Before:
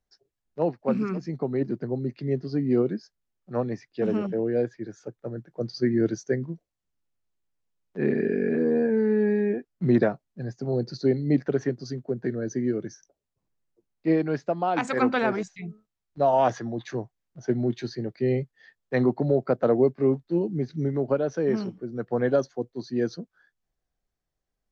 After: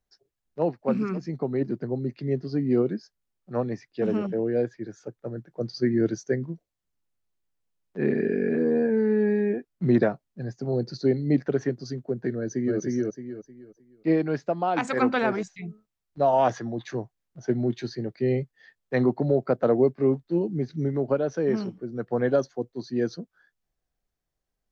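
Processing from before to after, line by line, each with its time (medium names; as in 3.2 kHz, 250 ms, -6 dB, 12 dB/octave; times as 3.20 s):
12.36–12.79 s: echo throw 310 ms, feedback 30%, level -0.5 dB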